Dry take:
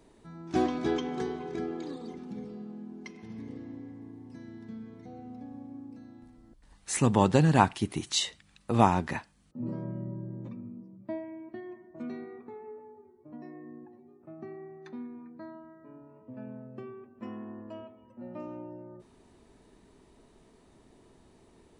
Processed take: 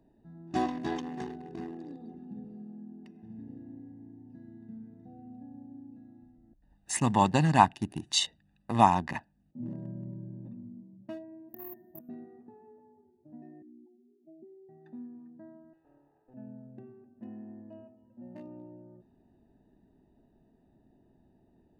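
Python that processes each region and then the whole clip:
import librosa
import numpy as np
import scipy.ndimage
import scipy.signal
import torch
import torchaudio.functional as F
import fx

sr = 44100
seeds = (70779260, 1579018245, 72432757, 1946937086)

y = fx.chain(x, sr, fx.over_compress(threshold_db=-42.0, ratio=-0.5),
    fx.resample_bad(factor=3, down='filtered', up='zero_stuff'), at=(11.49, 12.09))
y = fx.chain(y, sr, fx.spec_expand(power=2.5),
    fx.highpass(hz=270.0, slope=12), at=(13.62, 14.69))
y = fx.chain(y, sr, fx.lower_of_two(delay_ms=2.4),
    fx.low_shelf(hz=320.0, db=-10.5),
    fx.doppler_dist(depth_ms=0.24), at=(15.73, 16.34))
y = fx.wiener(y, sr, points=41)
y = fx.low_shelf(y, sr, hz=140.0, db=-12.0)
y = y + 0.63 * np.pad(y, (int(1.1 * sr / 1000.0), 0))[:len(y)]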